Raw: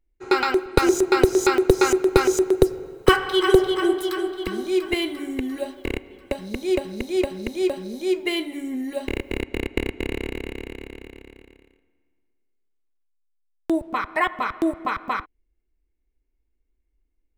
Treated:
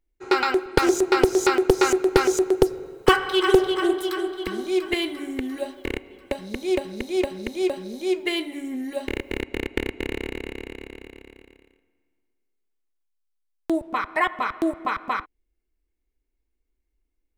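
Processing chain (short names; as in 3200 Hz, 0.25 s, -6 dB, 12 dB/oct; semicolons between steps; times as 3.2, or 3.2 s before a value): low shelf 220 Hz -4.5 dB; Doppler distortion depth 0.2 ms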